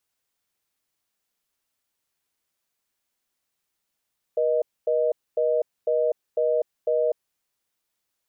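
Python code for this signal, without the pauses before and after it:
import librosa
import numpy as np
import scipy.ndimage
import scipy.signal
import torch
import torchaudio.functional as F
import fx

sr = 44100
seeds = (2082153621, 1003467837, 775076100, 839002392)

y = fx.call_progress(sr, length_s=2.83, kind='reorder tone', level_db=-22.0)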